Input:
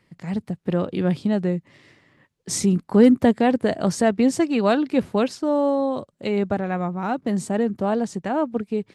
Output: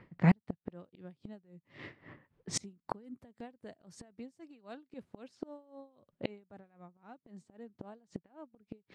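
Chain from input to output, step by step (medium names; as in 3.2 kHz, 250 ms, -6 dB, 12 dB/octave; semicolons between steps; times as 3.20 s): level-controlled noise filter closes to 1.8 kHz, open at -17 dBFS; inverted gate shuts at -20 dBFS, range -35 dB; logarithmic tremolo 3.8 Hz, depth 18 dB; trim +9 dB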